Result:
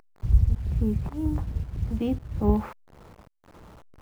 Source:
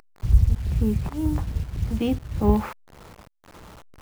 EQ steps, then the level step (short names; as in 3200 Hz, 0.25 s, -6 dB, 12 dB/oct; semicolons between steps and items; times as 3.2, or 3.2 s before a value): tilt shelf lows +4 dB, about 1500 Hz; -6.5 dB